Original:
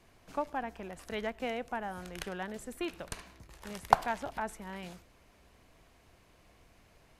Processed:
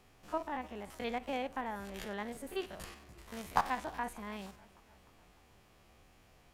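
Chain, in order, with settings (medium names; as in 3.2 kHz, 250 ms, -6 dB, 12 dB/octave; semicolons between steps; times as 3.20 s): spectrogram pixelated in time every 50 ms; tape speed +10%; modulated delay 300 ms, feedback 58%, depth 112 cents, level -23 dB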